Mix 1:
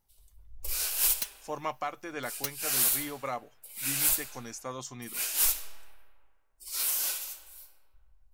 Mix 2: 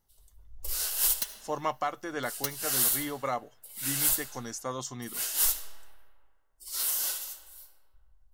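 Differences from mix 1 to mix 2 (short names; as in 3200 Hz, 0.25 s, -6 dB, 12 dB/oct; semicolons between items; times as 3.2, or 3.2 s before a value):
speech +3.5 dB; second sound: send on; master: add notch 2400 Hz, Q 5.1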